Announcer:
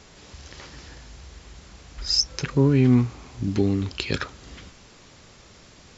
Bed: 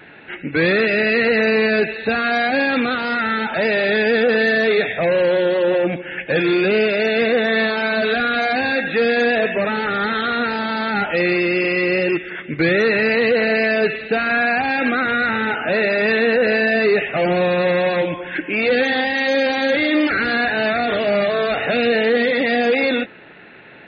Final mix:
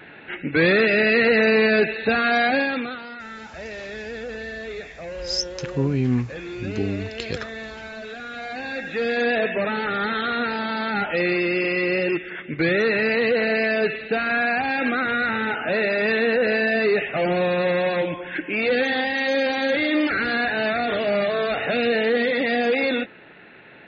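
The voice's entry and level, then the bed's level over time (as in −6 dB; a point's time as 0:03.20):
3.20 s, −4.0 dB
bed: 0:02.50 −1 dB
0:03.15 −17 dB
0:08.17 −17 dB
0:09.31 −4 dB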